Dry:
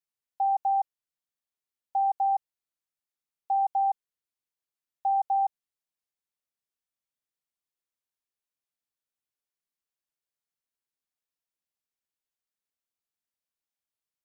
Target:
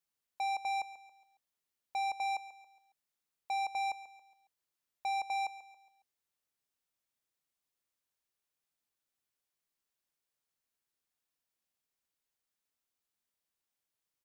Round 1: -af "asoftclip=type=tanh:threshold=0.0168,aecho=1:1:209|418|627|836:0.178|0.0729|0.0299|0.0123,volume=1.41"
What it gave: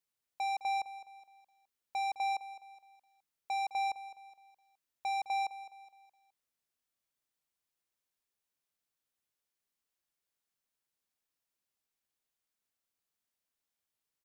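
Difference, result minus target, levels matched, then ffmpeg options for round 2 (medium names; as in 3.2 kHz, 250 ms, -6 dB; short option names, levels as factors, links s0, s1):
echo 71 ms late
-af "asoftclip=type=tanh:threshold=0.0168,aecho=1:1:138|276|414|552:0.178|0.0729|0.0299|0.0123,volume=1.41"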